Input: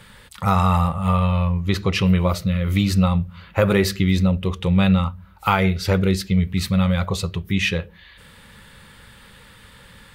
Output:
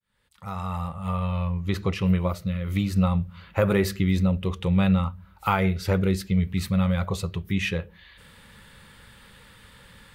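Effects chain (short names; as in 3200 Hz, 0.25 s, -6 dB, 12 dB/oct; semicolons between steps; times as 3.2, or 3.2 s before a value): opening faded in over 1.96 s; dynamic EQ 4300 Hz, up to -5 dB, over -37 dBFS, Q 0.78; 1.94–2.96 upward expander 1.5:1, over -23 dBFS; gain -4 dB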